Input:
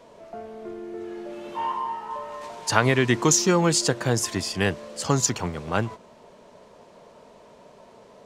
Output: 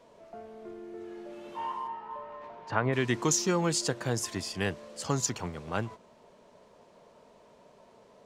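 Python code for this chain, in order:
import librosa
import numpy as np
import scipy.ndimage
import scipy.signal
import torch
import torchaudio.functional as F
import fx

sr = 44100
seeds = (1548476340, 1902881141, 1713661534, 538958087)

y = fx.lowpass(x, sr, hz=fx.line((1.87, 3300.0), (2.92, 1600.0)), slope=12, at=(1.87, 2.92), fade=0.02)
y = y * 10.0 ** (-7.5 / 20.0)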